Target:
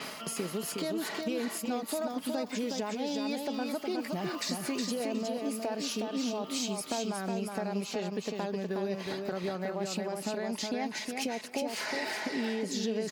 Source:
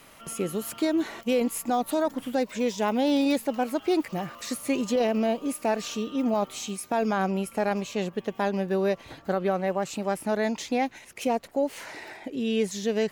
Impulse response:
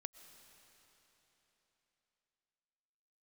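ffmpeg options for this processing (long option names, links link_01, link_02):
-af "highpass=150,equalizer=frequency=4800:width_type=o:width=0.32:gain=9,aecho=1:1:4.7:0.37,areverse,acompressor=mode=upward:threshold=-25dB:ratio=2.5,areverse,alimiter=limit=-18.5dB:level=0:latency=1:release=37,acompressor=threshold=-33dB:ratio=6,aecho=1:1:365|730|1095:0.631|0.114|0.0204,adynamicequalizer=threshold=0.00251:dfrequency=7800:dqfactor=0.7:tfrequency=7800:tqfactor=0.7:attack=5:release=100:ratio=0.375:range=2:mode=cutabove:tftype=highshelf,volume=1.5dB"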